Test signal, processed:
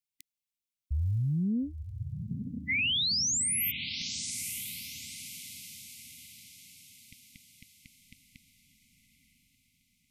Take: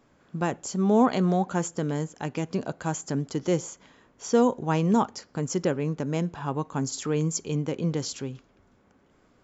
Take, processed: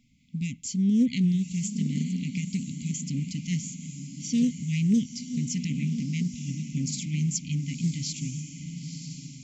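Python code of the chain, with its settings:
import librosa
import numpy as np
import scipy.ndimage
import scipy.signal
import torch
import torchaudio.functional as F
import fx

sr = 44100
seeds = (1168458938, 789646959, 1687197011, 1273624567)

y = fx.brickwall_bandstop(x, sr, low_hz=280.0, high_hz=2000.0)
y = fx.echo_diffused(y, sr, ms=970, feedback_pct=43, wet_db=-8)
y = fx.doppler_dist(y, sr, depth_ms=0.12)
y = F.gain(torch.from_numpy(y), 1.0).numpy()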